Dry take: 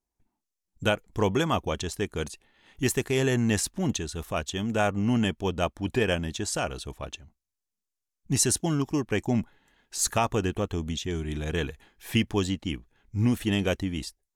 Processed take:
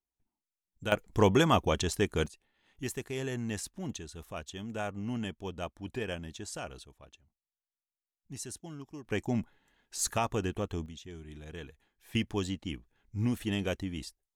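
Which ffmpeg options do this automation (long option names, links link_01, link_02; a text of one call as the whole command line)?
ffmpeg -i in.wav -af "asetnsamples=nb_out_samples=441:pad=0,asendcmd='0.92 volume volume 1dB;2.26 volume volume -11dB;6.85 volume volume -18dB;9.05 volume volume -5.5dB;10.86 volume volume -15dB;12.15 volume volume -6.5dB',volume=-10dB" out.wav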